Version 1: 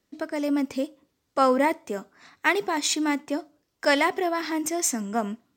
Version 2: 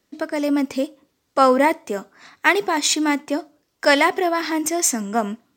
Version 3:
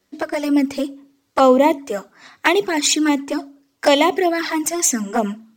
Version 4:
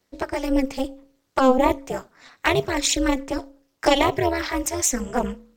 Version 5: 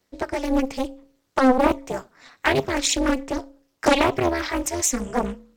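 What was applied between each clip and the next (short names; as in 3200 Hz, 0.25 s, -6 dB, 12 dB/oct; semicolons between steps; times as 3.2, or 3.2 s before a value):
low shelf 190 Hz -4.5 dB; gain +6 dB
envelope flanger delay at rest 10.9 ms, full sweep at -15 dBFS; de-hum 55.67 Hz, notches 5; gain +5 dB
AM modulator 260 Hz, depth 95%
Doppler distortion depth 0.52 ms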